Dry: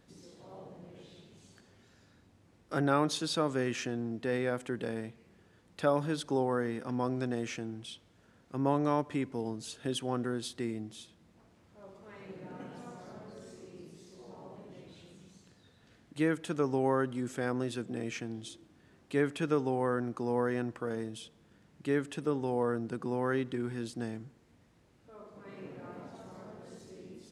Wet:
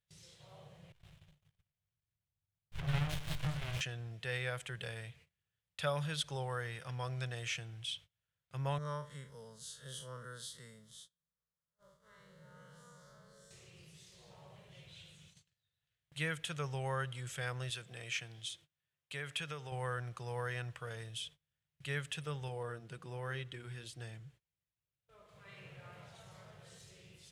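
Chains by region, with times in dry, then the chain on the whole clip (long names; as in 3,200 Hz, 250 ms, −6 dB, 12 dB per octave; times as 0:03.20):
0:00.92–0:03.81: all-pass dispersion lows, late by 93 ms, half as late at 610 Hz + repeating echo 118 ms, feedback 58%, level −14 dB + windowed peak hold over 65 samples
0:08.78–0:13.51: spectrum smeared in time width 91 ms + phaser with its sweep stopped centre 500 Hz, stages 8
0:17.70–0:19.72: high-pass filter 180 Hz 6 dB per octave + downward compressor 2 to 1, threshold −33 dBFS
0:22.48–0:25.29: parametric band 300 Hz +7.5 dB 1.2 octaves + flanger 1.2 Hz, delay 1 ms, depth 4.2 ms, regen −64%
whole clip: noise gate −56 dBFS, range −25 dB; drawn EQ curve 150 Hz 0 dB, 250 Hz −28 dB, 540 Hz −8 dB, 860 Hz −9 dB, 3,200 Hz +7 dB, 4,700 Hz 0 dB, 12,000 Hz +3 dB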